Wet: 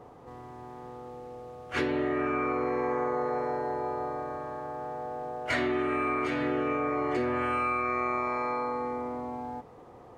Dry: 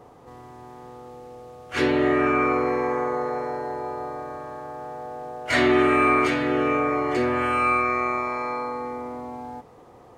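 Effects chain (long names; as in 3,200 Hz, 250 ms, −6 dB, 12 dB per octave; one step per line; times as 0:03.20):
high-shelf EQ 3,500 Hz −7 dB
downward compressor 12 to 1, threshold −24 dBFS, peak gain reduction 9.5 dB
level −1 dB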